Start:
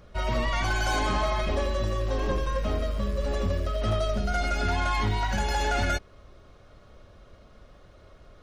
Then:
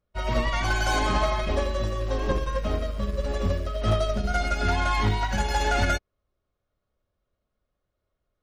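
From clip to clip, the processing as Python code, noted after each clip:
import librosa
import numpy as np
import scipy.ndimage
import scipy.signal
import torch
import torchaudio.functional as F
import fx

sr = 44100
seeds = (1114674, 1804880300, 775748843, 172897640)

y = fx.upward_expand(x, sr, threshold_db=-45.0, expansion=2.5)
y = y * librosa.db_to_amplitude(5.0)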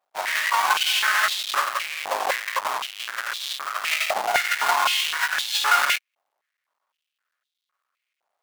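y = fx.halfwave_hold(x, sr)
y = fx.filter_held_highpass(y, sr, hz=3.9, low_hz=790.0, high_hz=3600.0)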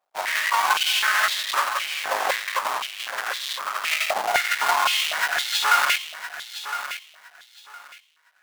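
y = fx.echo_feedback(x, sr, ms=1012, feedback_pct=21, wet_db=-11.0)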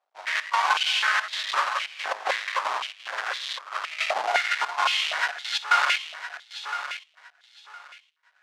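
y = fx.step_gate(x, sr, bpm=113, pattern='x.x.xxxxx.xxx', floor_db=-12.0, edge_ms=4.5)
y = fx.bandpass_edges(y, sr, low_hz=370.0, high_hz=5300.0)
y = y * librosa.db_to_amplitude(-1.5)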